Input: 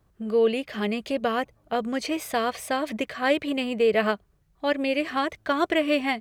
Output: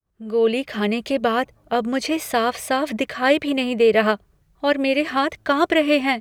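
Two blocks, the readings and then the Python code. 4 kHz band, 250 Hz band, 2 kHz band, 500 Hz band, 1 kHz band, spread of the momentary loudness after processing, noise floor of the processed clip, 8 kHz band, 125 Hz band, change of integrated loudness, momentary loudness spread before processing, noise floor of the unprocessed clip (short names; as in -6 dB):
+5.5 dB, +5.5 dB, +5.5 dB, +5.0 dB, +5.5 dB, 7 LU, -60 dBFS, +5.5 dB, n/a, +5.0 dB, 7 LU, -65 dBFS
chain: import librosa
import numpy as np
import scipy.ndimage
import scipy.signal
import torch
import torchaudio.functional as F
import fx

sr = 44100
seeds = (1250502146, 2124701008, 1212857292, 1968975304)

y = fx.fade_in_head(x, sr, length_s=0.58)
y = y * librosa.db_to_amplitude(5.5)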